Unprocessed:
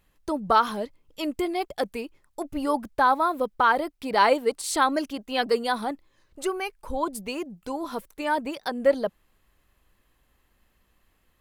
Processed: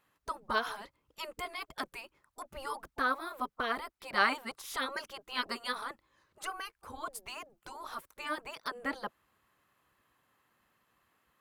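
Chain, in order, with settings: spectral gate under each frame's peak -10 dB weak; peaking EQ 1.2 kHz +8 dB 1.2 oct; trim -6 dB

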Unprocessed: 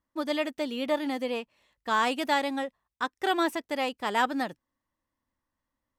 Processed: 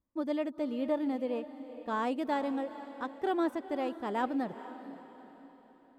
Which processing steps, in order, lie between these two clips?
tilt shelf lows +9 dB, about 1.1 kHz; echo that smears into a reverb 458 ms, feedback 45%, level -13 dB; trim -8.5 dB

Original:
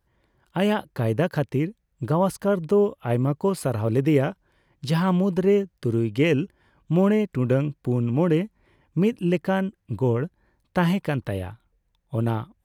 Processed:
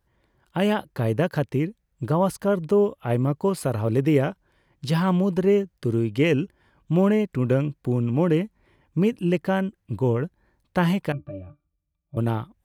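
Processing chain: 11.12–12.17 s: pitch-class resonator D, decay 0.11 s

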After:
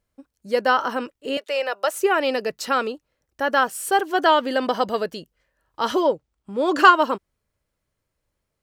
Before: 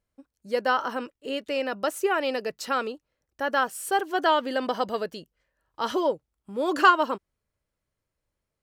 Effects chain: 1.37–1.94 s: high-pass 460 Hz 24 dB/octave; 6.02–6.79 s: peaking EQ 13 kHz -14 dB 0.6 oct; trim +5 dB

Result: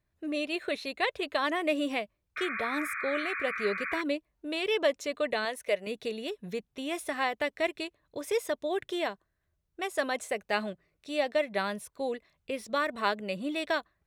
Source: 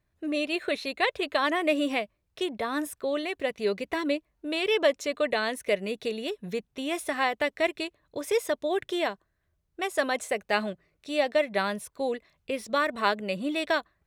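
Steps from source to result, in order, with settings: 2.36–4.02 s: painted sound noise 1.1–2.5 kHz -32 dBFS; 5.45–5.87 s: resonant low shelf 410 Hz -6.5 dB, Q 1.5; trim -3.5 dB

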